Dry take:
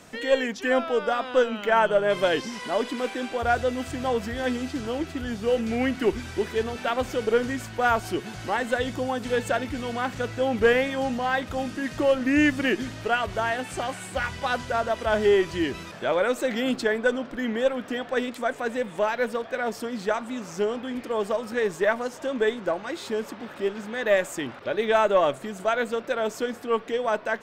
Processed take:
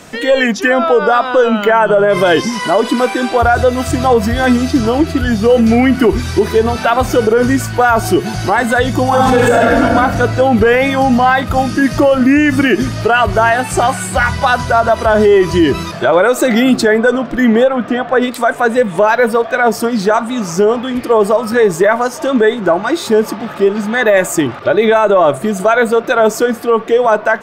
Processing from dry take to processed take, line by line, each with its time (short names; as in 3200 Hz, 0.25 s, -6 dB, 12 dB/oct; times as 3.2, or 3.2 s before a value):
9.04–9.76 reverb throw, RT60 1.6 s, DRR -6 dB
17.63–18.21 high shelf 6100 Hz -> 3600 Hz -11.5 dB
whole clip: spectral noise reduction 7 dB; dynamic EQ 4500 Hz, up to -4 dB, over -45 dBFS, Q 0.82; maximiser +20.5 dB; gain -1 dB